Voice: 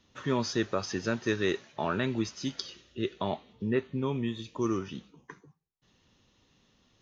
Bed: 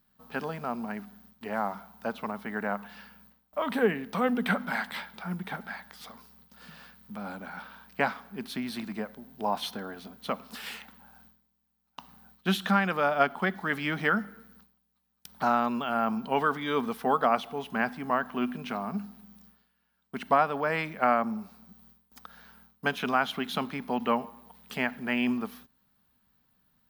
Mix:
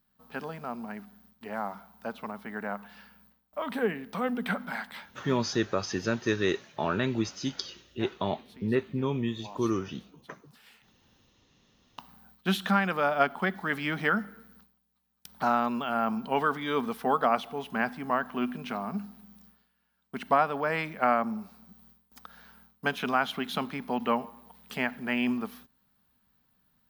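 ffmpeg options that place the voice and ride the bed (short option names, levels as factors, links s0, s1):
-filter_complex "[0:a]adelay=5000,volume=1.19[s0];[1:a]volume=4.73,afade=t=out:st=4.65:d=0.87:silence=0.199526,afade=t=in:st=11.45:d=0.53:silence=0.141254[s1];[s0][s1]amix=inputs=2:normalize=0"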